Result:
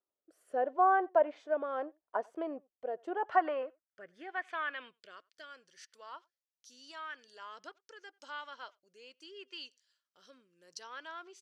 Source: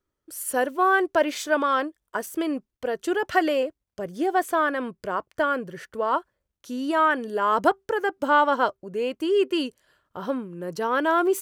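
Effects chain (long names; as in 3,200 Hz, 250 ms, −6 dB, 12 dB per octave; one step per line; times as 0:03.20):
rotating-speaker cabinet horn 0.8 Hz
treble cut that deepens with the level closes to 2,900 Hz, closed at −20 dBFS
far-end echo of a speakerphone 90 ms, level −27 dB
band-pass filter sweep 730 Hz → 5,400 Hz, 0:03.07–0:05.54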